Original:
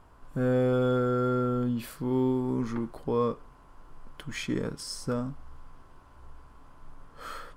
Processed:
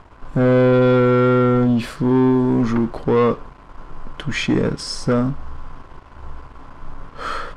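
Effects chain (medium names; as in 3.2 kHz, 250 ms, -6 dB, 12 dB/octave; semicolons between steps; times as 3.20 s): waveshaping leveller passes 2; distance through air 82 m; trim +7.5 dB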